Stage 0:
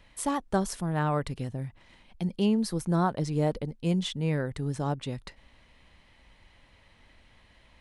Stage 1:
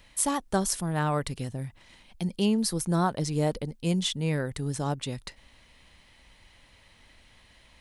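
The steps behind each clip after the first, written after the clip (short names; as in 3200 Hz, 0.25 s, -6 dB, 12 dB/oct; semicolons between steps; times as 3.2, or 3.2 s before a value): high shelf 3900 Hz +11 dB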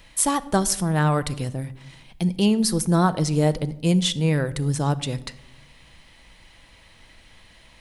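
reverb RT60 0.85 s, pre-delay 6 ms, DRR 12.5 dB; gain +5.5 dB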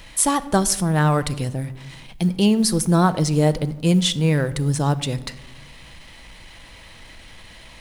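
G.711 law mismatch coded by mu; gain +2 dB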